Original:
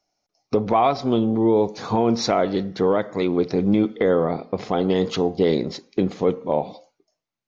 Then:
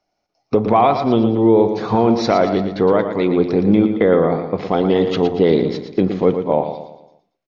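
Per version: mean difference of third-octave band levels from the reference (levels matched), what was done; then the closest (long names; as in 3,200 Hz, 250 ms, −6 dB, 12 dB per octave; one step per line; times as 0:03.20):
3.0 dB: low-pass filter 3,600 Hz 12 dB per octave
on a send: repeating echo 115 ms, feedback 43%, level −8.5 dB
on the sum: level +4.5 dB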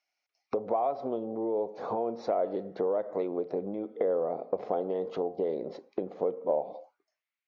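6.0 dB: downward compressor 12 to 1, threshold −24 dBFS, peak gain reduction 11 dB
envelope filter 580–2,300 Hz, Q 2.2, down, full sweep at −34.5 dBFS
level +3.5 dB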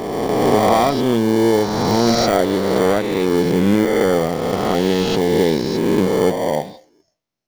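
11.5 dB: peak hold with a rise ahead of every peak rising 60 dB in 2.42 s
in parallel at −7 dB: sample-rate reduction 1,300 Hz, jitter 0%
on the sum: level −1 dB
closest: first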